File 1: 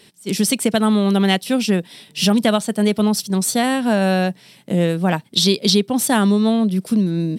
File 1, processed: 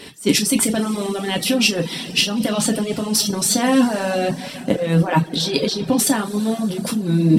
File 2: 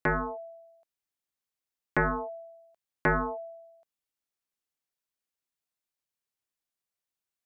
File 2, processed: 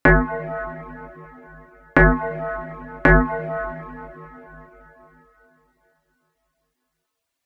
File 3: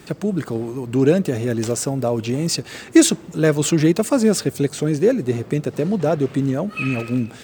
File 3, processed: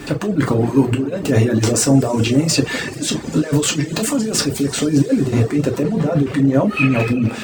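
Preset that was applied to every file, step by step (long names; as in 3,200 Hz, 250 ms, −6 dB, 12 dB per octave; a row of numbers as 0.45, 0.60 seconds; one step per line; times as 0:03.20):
compressor whose output falls as the input rises −24 dBFS, ratio −1
high-shelf EQ 4,500 Hz −6.5 dB
coupled-rooms reverb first 0.35 s, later 4.1 s, from −18 dB, DRR 0 dB
reverb reduction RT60 0.52 s
normalise the peak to −2 dBFS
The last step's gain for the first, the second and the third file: +5.5, +13.0, +6.0 decibels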